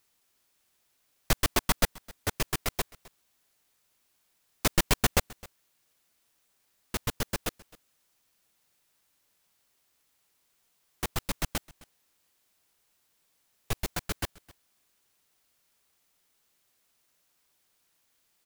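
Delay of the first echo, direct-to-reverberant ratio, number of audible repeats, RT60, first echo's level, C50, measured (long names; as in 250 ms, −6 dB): 262 ms, no reverb audible, 1, no reverb audible, −22.5 dB, no reverb audible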